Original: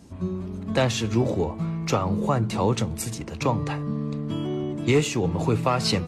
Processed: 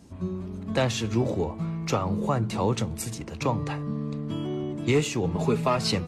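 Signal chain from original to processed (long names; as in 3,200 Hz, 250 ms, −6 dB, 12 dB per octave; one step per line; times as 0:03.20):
0:05.35–0:05.77: comb filter 4.8 ms, depth 71%
level −2.5 dB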